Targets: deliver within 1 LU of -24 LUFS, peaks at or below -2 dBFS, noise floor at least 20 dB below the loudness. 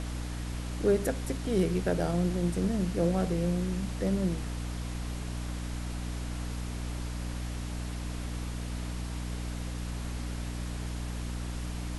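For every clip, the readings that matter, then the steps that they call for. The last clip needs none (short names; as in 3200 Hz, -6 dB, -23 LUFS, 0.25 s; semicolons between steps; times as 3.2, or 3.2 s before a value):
hum 60 Hz; harmonics up to 300 Hz; hum level -33 dBFS; noise floor -36 dBFS; noise floor target -53 dBFS; loudness -33.0 LUFS; peak -14.0 dBFS; loudness target -24.0 LUFS
-> de-hum 60 Hz, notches 5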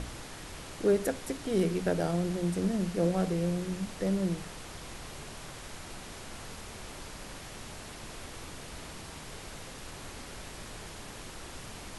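hum none; noise floor -45 dBFS; noise floor target -55 dBFS
-> noise print and reduce 10 dB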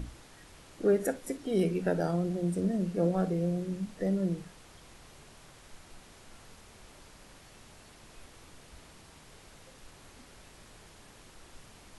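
noise floor -55 dBFS; loudness -31.0 LUFS; peak -15.0 dBFS; loudness target -24.0 LUFS
-> gain +7 dB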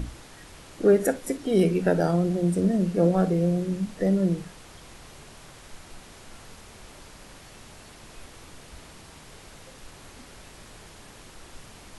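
loudness -24.0 LUFS; peak -8.0 dBFS; noise floor -48 dBFS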